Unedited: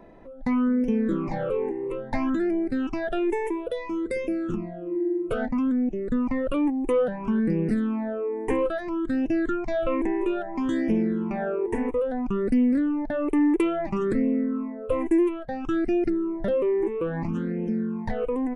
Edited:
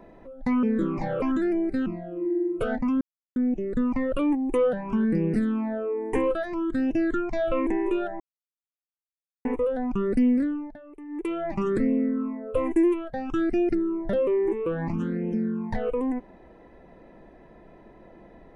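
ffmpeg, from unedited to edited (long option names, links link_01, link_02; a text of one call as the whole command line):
ffmpeg -i in.wav -filter_complex "[0:a]asplit=9[link_01][link_02][link_03][link_04][link_05][link_06][link_07][link_08][link_09];[link_01]atrim=end=0.632[link_10];[link_02]atrim=start=0.928:end=1.522[link_11];[link_03]atrim=start=2.198:end=2.842[link_12];[link_04]atrim=start=4.558:end=5.71,asetpts=PTS-STARTPTS,afade=type=out:start_time=1.148:duration=0.004:curve=hsin,apad=pad_dur=0.35[link_13];[link_05]atrim=start=5.71:end=10.55,asetpts=PTS-STARTPTS,afade=type=in:duration=0.004:curve=hsin,afade=type=out:start_time=4.836:duration=0.004:curve=hsin[link_14];[link_06]atrim=start=10.55:end=11.8,asetpts=PTS-STARTPTS,volume=0[link_15];[link_07]atrim=start=11.8:end=13.15,asetpts=PTS-STARTPTS,afade=type=in:duration=0.004:curve=hsin,afade=type=out:start_time=0.87:duration=0.48:silence=0.0944061[link_16];[link_08]atrim=start=13.15:end=13.43,asetpts=PTS-STARTPTS,volume=-20.5dB[link_17];[link_09]atrim=start=13.43,asetpts=PTS-STARTPTS,afade=type=in:duration=0.48:silence=0.0944061[link_18];[link_10][link_11]acrossfade=duration=0.004:curve1=hsin:curve2=hsin[link_19];[link_19][link_12]acrossfade=duration=0.004:curve1=hsin:curve2=hsin[link_20];[link_13][link_14][link_15][link_16][link_17][link_18]concat=n=6:v=0:a=1[link_21];[link_20][link_21]acrossfade=duration=0.004:curve1=hsin:curve2=hsin" out.wav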